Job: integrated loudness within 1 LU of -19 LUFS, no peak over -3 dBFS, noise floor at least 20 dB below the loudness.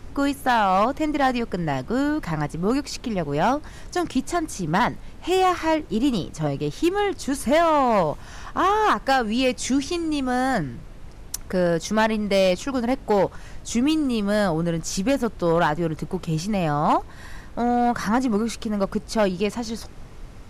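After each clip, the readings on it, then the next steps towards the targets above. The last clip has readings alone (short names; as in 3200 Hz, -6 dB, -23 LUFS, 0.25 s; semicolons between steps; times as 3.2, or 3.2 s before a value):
clipped 1.0%; flat tops at -13.0 dBFS; noise floor -41 dBFS; noise floor target -43 dBFS; loudness -23.0 LUFS; peak -13.0 dBFS; loudness target -19.0 LUFS
-> clip repair -13 dBFS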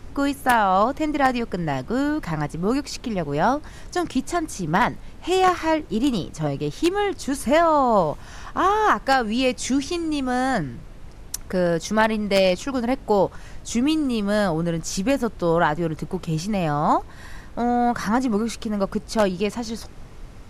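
clipped 0.0%; noise floor -41 dBFS; noise floor target -43 dBFS
-> noise print and reduce 6 dB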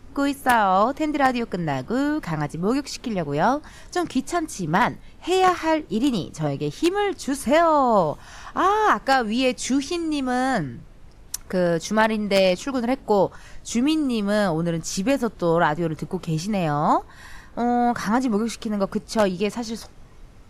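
noise floor -46 dBFS; loudness -22.5 LUFS; peak -4.0 dBFS; loudness target -19.0 LUFS
-> gain +3.5 dB; limiter -3 dBFS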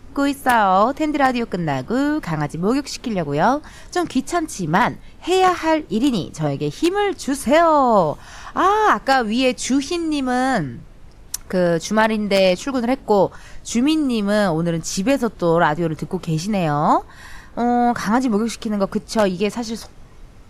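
loudness -19.0 LUFS; peak -3.0 dBFS; noise floor -42 dBFS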